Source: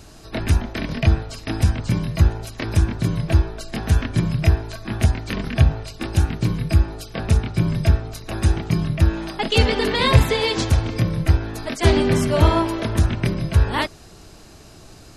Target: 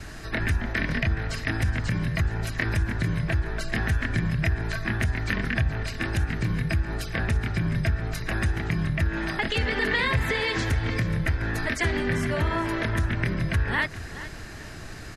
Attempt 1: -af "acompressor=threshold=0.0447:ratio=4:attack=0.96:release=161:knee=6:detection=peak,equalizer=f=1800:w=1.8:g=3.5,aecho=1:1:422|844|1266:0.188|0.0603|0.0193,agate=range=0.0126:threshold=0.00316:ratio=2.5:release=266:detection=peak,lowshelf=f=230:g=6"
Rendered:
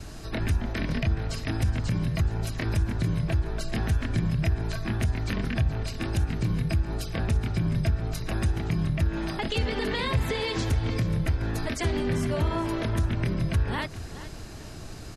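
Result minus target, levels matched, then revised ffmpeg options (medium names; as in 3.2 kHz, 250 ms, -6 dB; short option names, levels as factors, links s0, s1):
2 kHz band -7.5 dB
-af "acompressor=threshold=0.0447:ratio=4:attack=0.96:release=161:knee=6:detection=peak,equalizer=f=1800:w=1.8:g=15,aecho=1:1:422|844|1266:0.188|0.0603|0.0193,agate=range=0.0126:threshold=0.00316:ratio=2.5:release=266:detection=peak,lowshelf=f=230:g=6"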